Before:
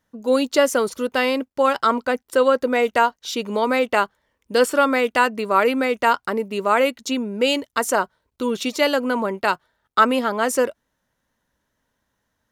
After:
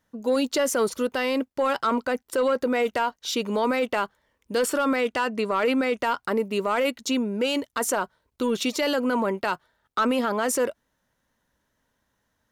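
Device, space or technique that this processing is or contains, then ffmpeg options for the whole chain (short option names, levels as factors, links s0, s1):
soft clipper into limiter: -filter_complex "[0:a]asettb=1/sr,asplit=3[s0][s1][s2];[s0]atrim=end=4.964[s3];[s1]atrim=start=4.96:end=6,asetpts=PTS-STARTPTS,afade=t=in:d=0.004:c=qsin,afade=t=out:st=1.036:d=0.004:c=qsin,lowpass=10000[s4];[s2]atrim=start=5.996[s5];[s3][s4]acrossfade=d=0.004:c1=hsin:c2=qsin[s6];[s6][s5]acrossfade=d=0.004:c1=qsin:c2=hsin,asoftclip=type=tanh:threshold=0.376,alimiter=limit=0.158:level=0:latency=1:release=17"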